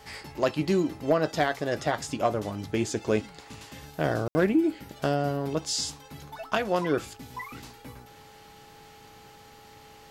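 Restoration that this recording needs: clip repair -13.5 dBFS; de-hum 434.7 Hz, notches 4; band-stop 820 Hz, Q 30; room tone fill 4.28–4.35 s

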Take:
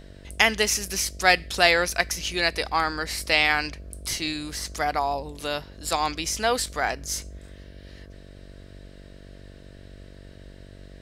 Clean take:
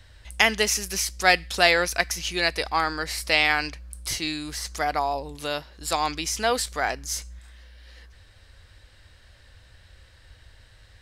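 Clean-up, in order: de-hum 47.9 Hz, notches 14

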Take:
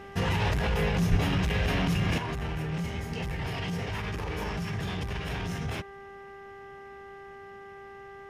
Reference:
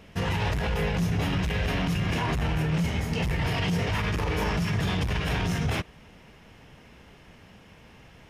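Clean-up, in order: de-hum 395.7 Hz, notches 5; 1.10–1.22 s: high-pass 140 Hz 24 dB/octave; 2.18 s: gain correction +6.5 dB

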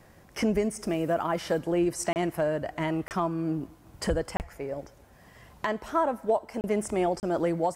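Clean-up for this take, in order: interpolate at 2.13/3.08/4.37/6.61/7.20 s, 29 ms

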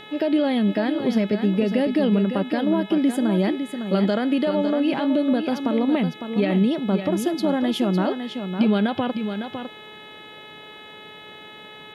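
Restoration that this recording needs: de-hum 426.6 Hz, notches 9; inverse comb 555 ms -8 dB

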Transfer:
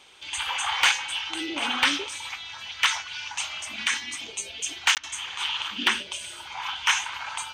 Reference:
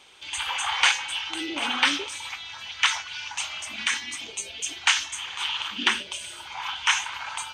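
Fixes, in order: clip repair -11.5 dBFS; interpolate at 4.95 s, 18 ms; interpolate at 4.98 s, 53 ms

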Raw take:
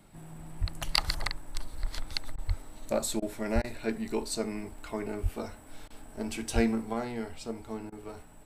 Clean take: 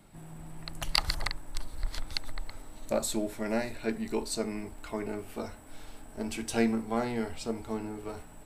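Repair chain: de-plosive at 0.60/2.47/3.54/5.22/6.54 s; interpolate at 2.36/3.20/3.62/5.88/7.90 s, 21 ms; gain correction +3.5 dB, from 6.93 s

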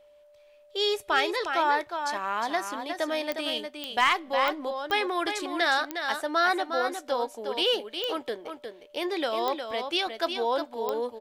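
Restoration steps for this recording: clip repair -12.5 dBFS; de-click; band-stop 590 Hz, Q 30; inverse comb 359 ms -7 dB

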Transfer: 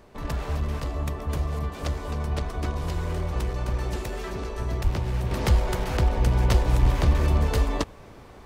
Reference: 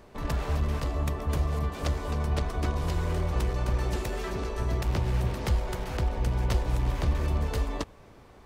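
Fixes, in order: 4.83–4.95 s: high-pass 140 Hz 24 dB/octave; 5.31 s: gain correction -6 dB; 6.81–6.93 s: high-pass 140 Hz 24 dB/octave

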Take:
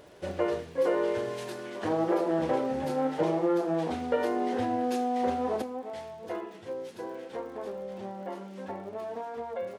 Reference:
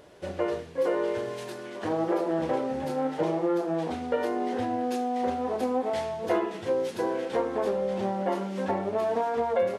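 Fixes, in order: de-click; gain correction +10 dB, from 5.62 s

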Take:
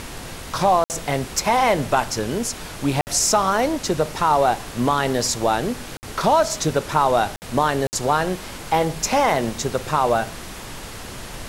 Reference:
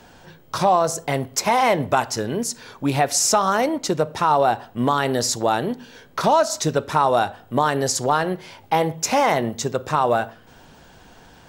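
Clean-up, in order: interpolate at 0.84/3.01/5.97/7.36/7.87 s, 59 ms; noise print and reduce 13 dB

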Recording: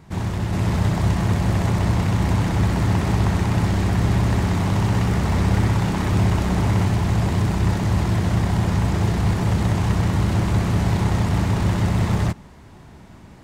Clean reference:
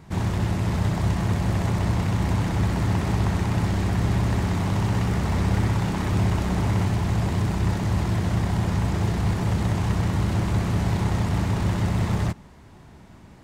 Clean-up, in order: gain correction -3.5 dB, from 0.53 s

